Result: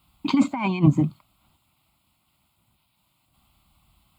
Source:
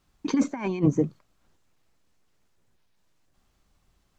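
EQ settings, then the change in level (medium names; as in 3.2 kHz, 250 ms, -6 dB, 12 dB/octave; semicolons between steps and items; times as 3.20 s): high-pass 54 Hz; treble shelf 4.8 kHz +7 dB; static phaser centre 1.7 kHz, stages 6; +8.5 dB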